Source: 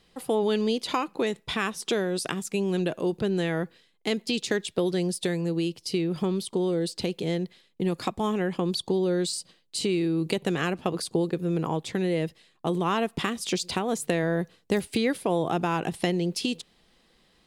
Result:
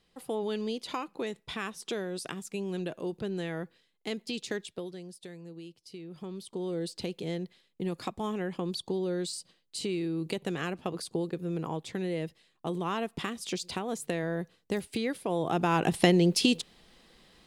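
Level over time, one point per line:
0:04.60 −8 dB
0:05.02 −18 dB
0:05.98 −18 dB
0:06.79 −6.5 dB
0:15.24 −6.5 dB
0:15.95 +4 dB

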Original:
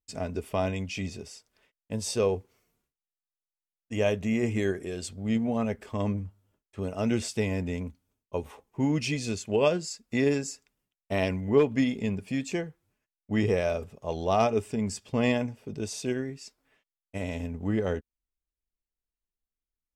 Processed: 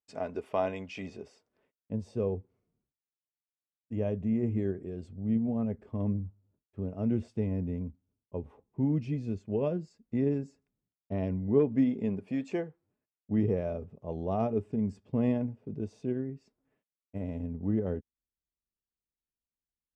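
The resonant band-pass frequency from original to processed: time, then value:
resonant band-pass, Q 0.6
0:00.98 760 Hz
0:02.10 140 Hz
0:11.34 140 Hz
0:12.53 560 Hz
0:13.33 170 Hz

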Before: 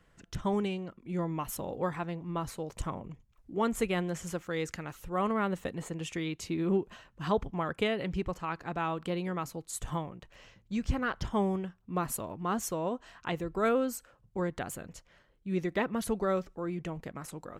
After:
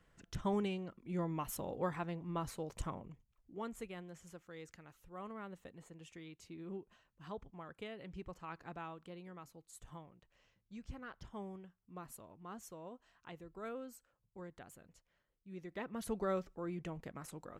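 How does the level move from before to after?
0:02.78 −5 dB
0:03.95 −17.5 dB
0:07.87 −17.5 dB
0:08.64 −10.5 dB
0:09.03 −17.5 dB
0:15.58 −17.5 dB
0:16.18 −6.5 dB

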